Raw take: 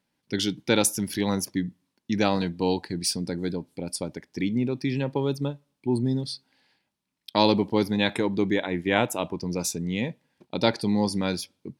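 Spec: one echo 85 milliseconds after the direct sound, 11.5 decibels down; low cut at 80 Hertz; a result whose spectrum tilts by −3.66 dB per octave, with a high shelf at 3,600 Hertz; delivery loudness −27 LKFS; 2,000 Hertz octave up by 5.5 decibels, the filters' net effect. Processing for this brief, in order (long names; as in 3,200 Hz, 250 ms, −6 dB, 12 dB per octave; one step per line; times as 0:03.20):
high-pass filter 80 Hz
parametric band 2,000 Hz +5.5 dB
high-shelf EQ 3,600 Hz +4.5 dB
single-tap delay 85 ms −11.5 dB
level −2 dB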